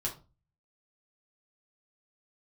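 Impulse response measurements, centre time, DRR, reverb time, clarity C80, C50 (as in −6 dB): 18 ms, −3.0 dB, 0.30 s, 18.0 dB, 11.0 dB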